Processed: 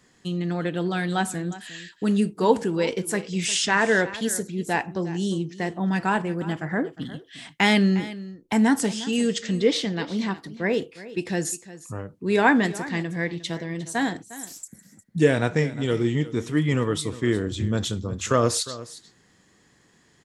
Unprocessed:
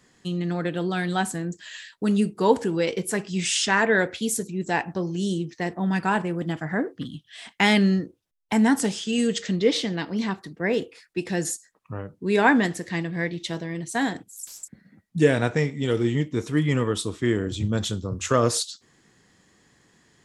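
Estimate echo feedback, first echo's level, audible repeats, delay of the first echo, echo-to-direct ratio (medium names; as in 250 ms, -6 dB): no regular repeats, -16.5 dB, 1, 356 ms, -16.5 dB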